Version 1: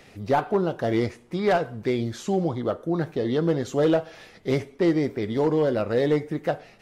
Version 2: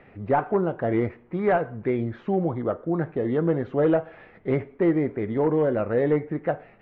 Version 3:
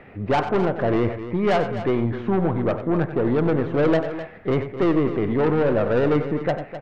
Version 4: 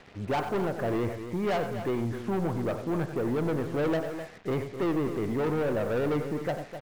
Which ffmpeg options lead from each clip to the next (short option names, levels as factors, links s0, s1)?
-af "lowpass=f=2200:w=0.5412,lowpass=f=2200:w=1.3066"
-filter_complex "[0:a]aeval=exprs='(tanh(14.1*val(0)+0.35)-tanh(0.35))/14.1':c=same,asplit=2[s0][s1];[s1]aecho=0:1:93.29|256.6:0.282|0.251[s2];[s0][s2]amix=inputs=2:normalize=0,volume=2.24"
-af "asoftclip=type=tanh:threshold=0.168,acrusher=bits=6:mix=0:aa=0.5,volume=0.501"